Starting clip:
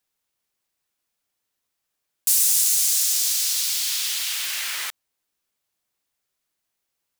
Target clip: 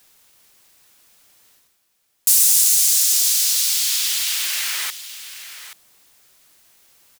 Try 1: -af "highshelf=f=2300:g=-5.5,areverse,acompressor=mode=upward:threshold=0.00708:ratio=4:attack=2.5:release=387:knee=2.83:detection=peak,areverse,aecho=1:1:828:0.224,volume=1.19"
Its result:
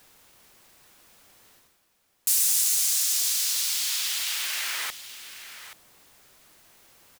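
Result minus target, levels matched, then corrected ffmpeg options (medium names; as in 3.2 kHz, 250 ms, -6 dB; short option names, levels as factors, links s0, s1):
2 kHz band +4.0 dB
-af "highshelf=f=2300:g=3,areverse,acompressor=mode=upward:threshold=0.00708:ratio=4:attack=2.5:release=387:knee=2.83:detection=peak,areverse,aecho=1:1:828:0.224,volume=1.19"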